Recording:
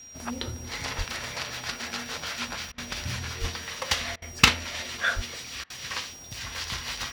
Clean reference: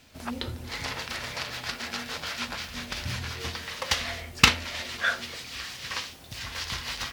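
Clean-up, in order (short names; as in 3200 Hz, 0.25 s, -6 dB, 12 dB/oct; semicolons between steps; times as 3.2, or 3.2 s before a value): notch 5700 Hz, Q 30; de-plosive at 0.97/3.4/5.15; interpolate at 2.72/4.16/5.64, 59 ms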